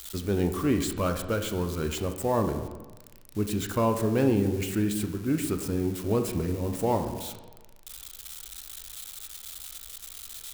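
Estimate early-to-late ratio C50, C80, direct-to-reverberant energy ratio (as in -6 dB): 8.5 dB, 11.0 dB, 6.0 dB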